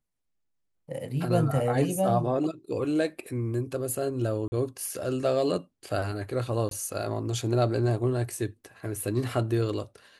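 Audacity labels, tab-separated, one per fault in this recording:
4.480000	4.520000	dropout 40 ms
6.690000	6.710000	dropout 22 ms

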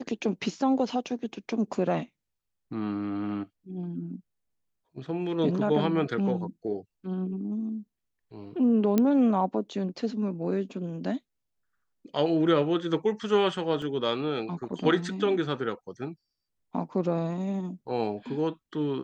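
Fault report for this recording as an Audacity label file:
8.980000	8.980000	pop -11 dBFS
13.820000	13.820000	dropout 2.1 ms

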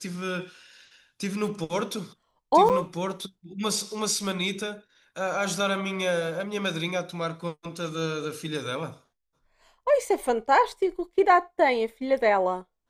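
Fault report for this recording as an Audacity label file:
2.690000	2.700000	dropout 8 ms

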